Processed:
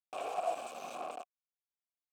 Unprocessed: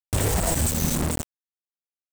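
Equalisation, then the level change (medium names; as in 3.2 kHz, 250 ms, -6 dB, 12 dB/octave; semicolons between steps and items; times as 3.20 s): vowel filter a; high-pass 350 Hz 12 dB/octave; +1.0 dB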